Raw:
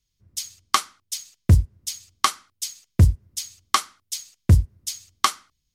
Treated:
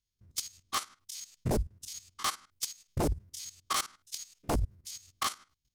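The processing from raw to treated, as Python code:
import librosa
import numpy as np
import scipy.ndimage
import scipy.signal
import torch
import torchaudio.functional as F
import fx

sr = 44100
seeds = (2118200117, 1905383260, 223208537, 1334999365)

y = fx.spec_steps(x, sr, hold_ms=50)
y = fx.level_steps(y, sr, step_db=15)
y = 10.0 ** (-25.0 / 20.0) * (np.abs((y / 10.0 ** (-25.0 / 20.0) + 3.0) % 4.0 - 2.0) - 1.0)
y = F.gain(torch.from_numpy(y), 2.5).numpy()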